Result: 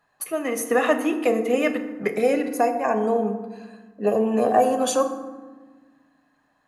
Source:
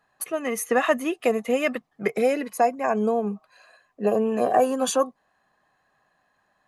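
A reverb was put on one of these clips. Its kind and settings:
feedback delay network reverb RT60 1.3 s, low-frequency decay 1.6×, high-frequency decay 0.5×, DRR 6 dB

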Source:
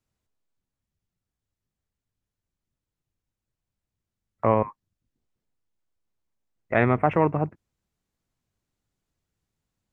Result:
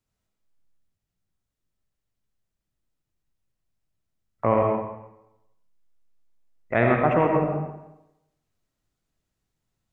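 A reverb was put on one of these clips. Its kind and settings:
comb and all-pass reverb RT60 0.89 s, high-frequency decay 0.85×, pre-delay 40 ms, DRR 0.5 dB
level −1 dB

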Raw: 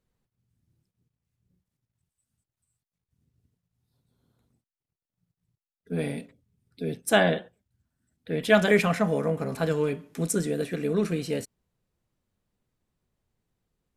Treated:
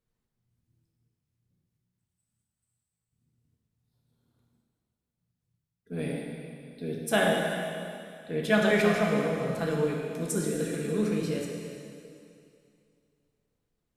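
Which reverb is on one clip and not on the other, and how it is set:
dense smooth reverb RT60 2.5 s, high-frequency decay 1×, DRR −1 dB
level −5.5 dB

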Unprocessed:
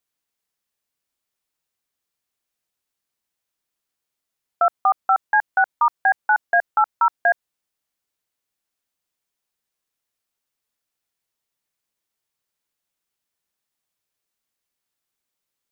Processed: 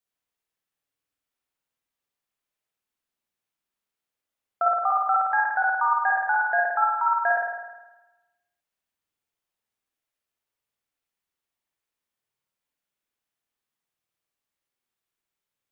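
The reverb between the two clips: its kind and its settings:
spring reverb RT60 1.1 s, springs 51 ms, chirp 75 ms, DRR −3 dB
level −7 dB

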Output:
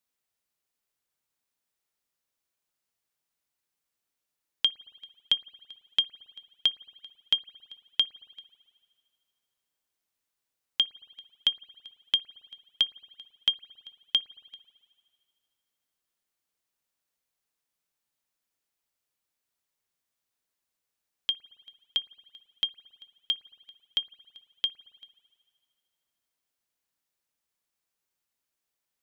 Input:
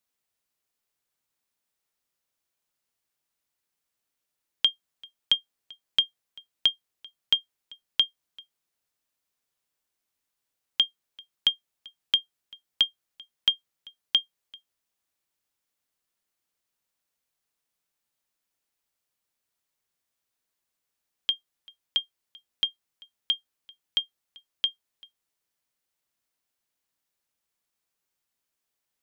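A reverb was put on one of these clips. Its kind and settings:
spring reverb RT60 2.1 s, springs 55 ms, chirp 55 ms, DRR 19.5 dB
level −2 dB

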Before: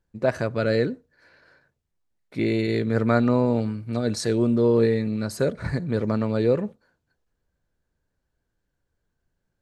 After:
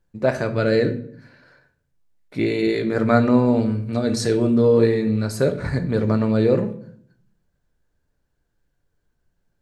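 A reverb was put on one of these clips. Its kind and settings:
rectangular room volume 83 cubic metres, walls mixed, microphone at 0.35 metres
level +2.5 dB

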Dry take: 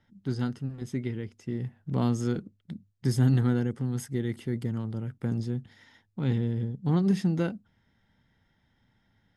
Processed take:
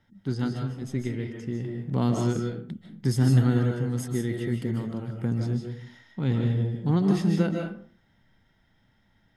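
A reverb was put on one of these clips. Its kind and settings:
comb and all-pass reverb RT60 0.47 s, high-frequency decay 0.65×, pre-delay 110 ms, DRR 1.5 dB
level +1.5 dB

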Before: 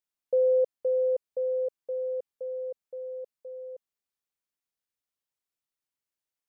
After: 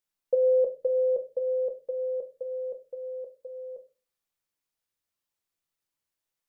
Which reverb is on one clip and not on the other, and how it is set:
rectangular room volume 130 cubic metres, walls furnished, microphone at 0.72 metres
level +2.5 dB

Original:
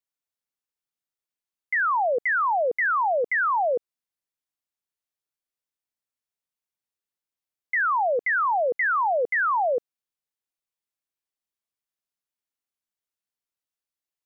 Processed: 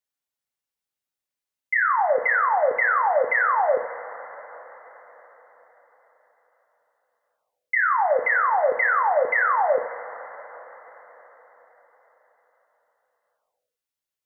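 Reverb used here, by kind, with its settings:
coupled-rooms reverb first 0.47 s, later 5 s, from −18 dB, DRR 1.5 dB

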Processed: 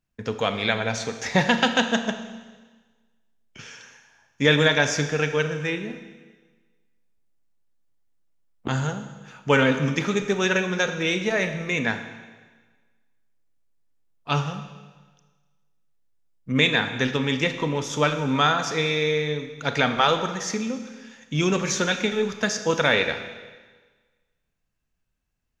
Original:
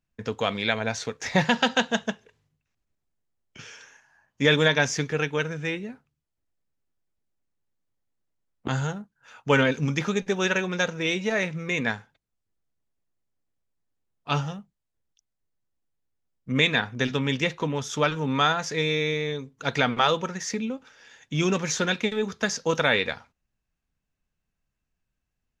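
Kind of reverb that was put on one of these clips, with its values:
four-comb reverb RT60 1.4 s, combs from 27 ms, DRR 8 dB
level +1.5 dB

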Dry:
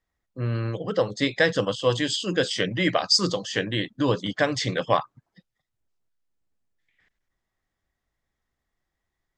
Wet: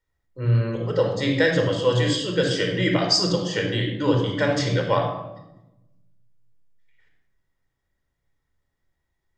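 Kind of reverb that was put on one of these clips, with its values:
rectangular room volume 3,900 cubic metres, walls furnished, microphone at 4.6 metres
level −3 dB

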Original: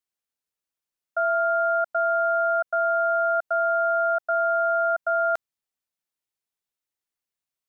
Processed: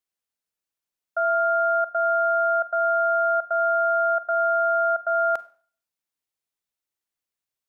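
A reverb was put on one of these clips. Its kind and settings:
four-comb reverb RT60 0.45 s, combs from 32 ms, DRR 16 dB

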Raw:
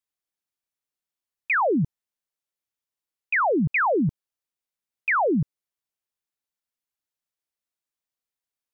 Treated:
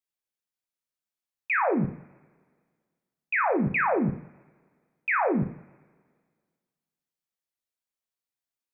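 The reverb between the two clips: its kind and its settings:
coupled-rooms reverb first 0.5 s, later 1.8 s, from −24 dB, DRR 3 dB
level −4.5 dB

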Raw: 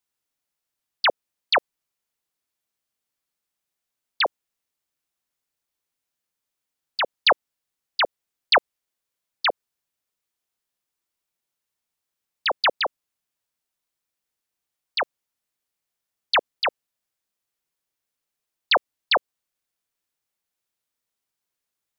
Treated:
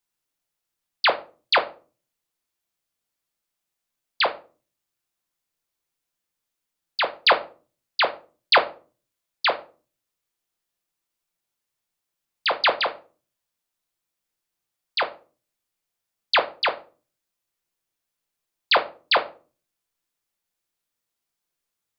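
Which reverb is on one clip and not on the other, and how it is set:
rectangular room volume 210 cubic metres, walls furnished, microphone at 0.81 metres

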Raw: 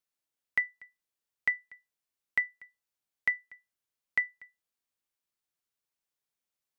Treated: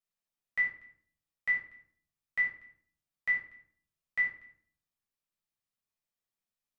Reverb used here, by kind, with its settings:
rectangular room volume 620 cubic metres, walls furnished, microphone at 6.1 metres
level −11.5 dB

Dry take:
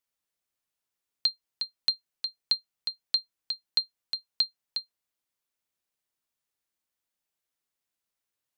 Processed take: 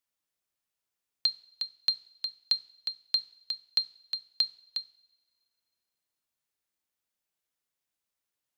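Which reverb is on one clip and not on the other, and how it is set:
coupled-rooms reverb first 0.64 s, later 2.3 s, from −18 dB, DRR 16 dB
level −1 dB

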